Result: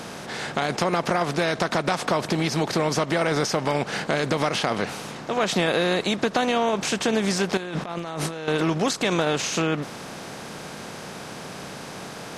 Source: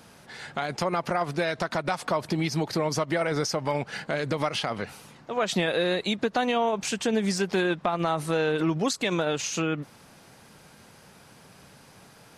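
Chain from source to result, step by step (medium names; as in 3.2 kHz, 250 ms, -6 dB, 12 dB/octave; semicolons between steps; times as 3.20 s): spectral levelling over time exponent 0.6; 7.57–8.48 s: compressor with a negative ratio -31 dBFS, ratio -1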